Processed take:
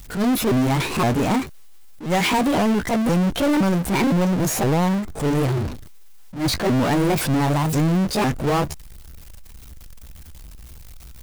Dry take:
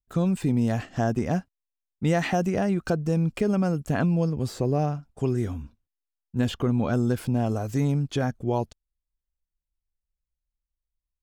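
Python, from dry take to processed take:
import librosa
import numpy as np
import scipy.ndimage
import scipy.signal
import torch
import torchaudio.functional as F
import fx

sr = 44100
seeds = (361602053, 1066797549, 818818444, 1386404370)

y = fx.pitch_ramps(x, sr, semitones=8.0, every_ms=515)
y = fx.power_curve(y, sr, exponent=0.35)
y = fx.attack_slew(y, sr, db_per_s=150.0)
y = y * 10.0 ** (-1.5 / 20.0)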